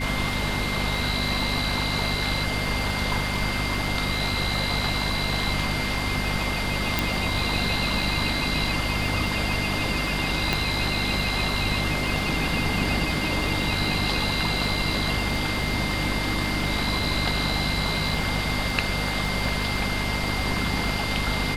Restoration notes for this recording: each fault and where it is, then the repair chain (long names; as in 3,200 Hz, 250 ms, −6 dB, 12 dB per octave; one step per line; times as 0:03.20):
surface crackle 29 per second −31 dBFS
mains hum 50 Hz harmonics 5 −30 dBFS
whistle 2,100 Hz −31 dBFS
0:06.99: click
0:10.53: click −8 dBFS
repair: click removal
notch filter 2,100 Hz, Q 30
hum removal 50 Hz, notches 5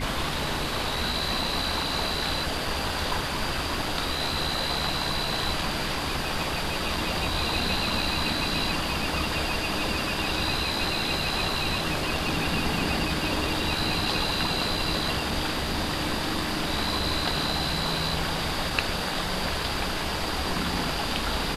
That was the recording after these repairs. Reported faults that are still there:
none of them is left